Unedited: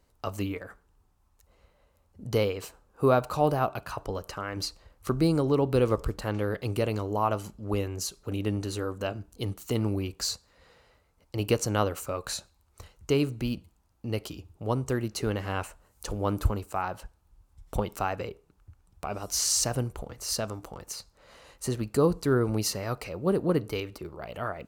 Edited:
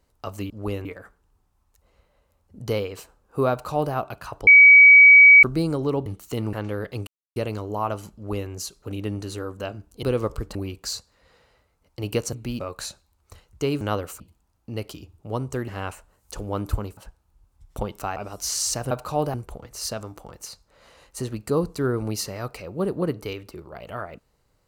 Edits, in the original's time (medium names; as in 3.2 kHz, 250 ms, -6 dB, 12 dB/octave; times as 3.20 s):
3.16–3.59 s: copy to 19.81 s
4.12–5.08 s: bleep 2.27 kHz -6.5 dBFS
5.71–6.23 s: swap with 9.44–9.91 s
6.77 s: insert silence 0.29 s
7.56–7.91 s: copy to 0.50 s
11.69–12.08 s: swap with 13.29–13.56 s
15.04–15.40 s: delete
16.69–16.94 s: delete
18.13–19.06 s: delete